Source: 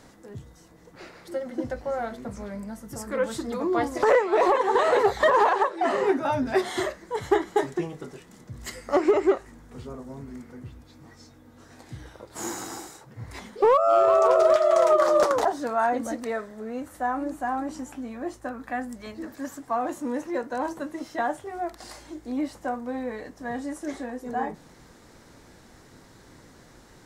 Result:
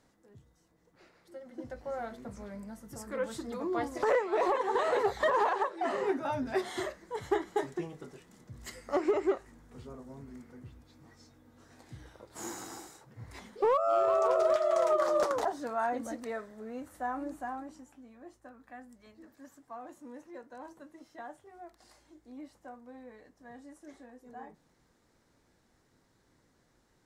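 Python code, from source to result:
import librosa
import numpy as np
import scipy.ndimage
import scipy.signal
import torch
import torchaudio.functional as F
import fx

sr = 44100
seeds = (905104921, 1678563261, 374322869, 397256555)

y = fx.gain(x, sr, db=fx.line((1.34, -16.5), (1.94, -8.0), (17.37, -8.0), (17.91, -18.0)))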